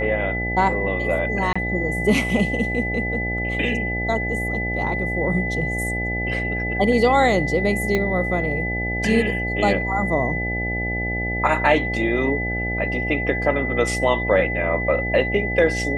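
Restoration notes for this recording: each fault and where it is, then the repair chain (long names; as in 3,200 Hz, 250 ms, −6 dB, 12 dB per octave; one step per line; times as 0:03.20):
mains buzz 60 Hz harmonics 14 −27 dBFS
whistle 2,000 Hz −25 dBFS
0:01.53–0:01.55: drop-out 25 ms
0:07.95: click −9 dBFS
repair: click removal
hum removal 60 Hz, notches 14
notch filter 2,000 Hz, Q 30
repair the gap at 0:01.53, 25 ms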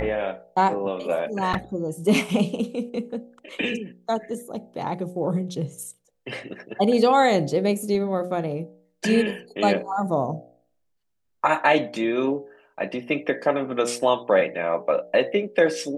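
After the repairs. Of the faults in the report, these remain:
0:07.95: click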